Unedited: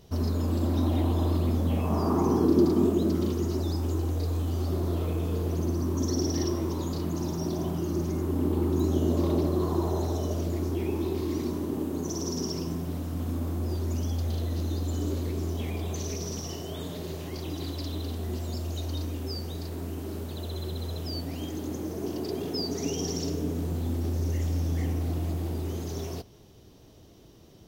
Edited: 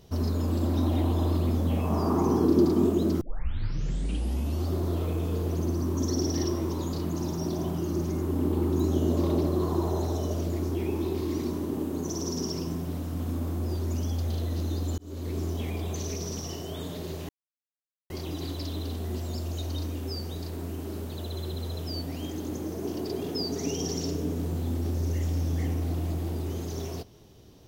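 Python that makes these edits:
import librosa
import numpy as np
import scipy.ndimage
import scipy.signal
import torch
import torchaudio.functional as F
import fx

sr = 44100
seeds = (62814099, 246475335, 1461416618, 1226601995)

y = fx.edit(x, sr, fx.tape_start(start_s=3.21, length_s=1.44),
    fx.fade_in_span(start_s=14.98, length_s=0.38),
    fx.insert_silence(at_s=17.29, length_s=0.81), tone=tone)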